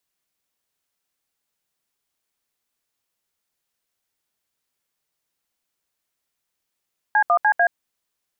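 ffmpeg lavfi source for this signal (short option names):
-f lavfi -i "aevalsrc='0.158*clip(min(mod(t,0.148),0.076-mod(t,0.148))/0.002,0,1)*(eq(floor(t/0.148),0)*(sin(2*PI*852*mod(t,0.148))+sin(2*PI*1633*mod(t,0.148)))+eq(floor(t/0.148),1)*(sin(2*PI*697*mod(t,0.148))+sin(2*PI*1209*mod(t,0.148)))+eq(floor(t/0.148),2)*(sin(2*PI*852*mod(t,0.148))+sin(2*PI*1633*mod(t,0.148)))+eq(floor(t/0.148),3)*(sin(2*PI*697*mod(t,0.148))+sin(2*PI*1633*mod(t,0.148))))':d=0.592:s=44100"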